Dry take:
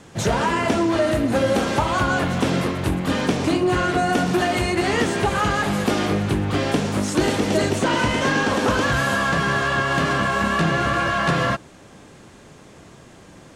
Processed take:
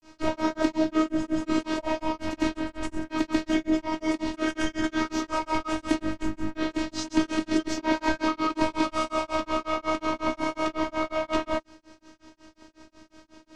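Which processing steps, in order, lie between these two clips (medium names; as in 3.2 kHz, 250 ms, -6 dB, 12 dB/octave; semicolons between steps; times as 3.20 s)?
formant shift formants -5 st; robot voice 316 Hz; granulator 186 ms, grains 5.5 per s, pitch spread up and down by 0 st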